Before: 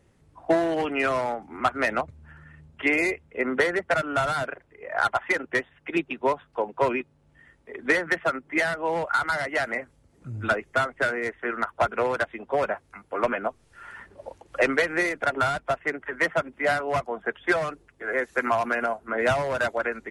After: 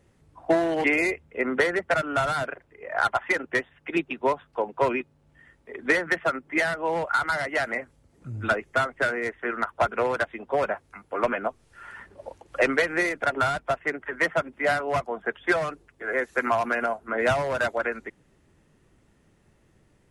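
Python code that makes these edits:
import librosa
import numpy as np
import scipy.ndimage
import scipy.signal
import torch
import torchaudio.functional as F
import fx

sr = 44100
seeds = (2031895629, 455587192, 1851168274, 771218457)

y = fx.edit(x, sr, fx.cut(start_s=0.84, length_s=2.0), tone=tone)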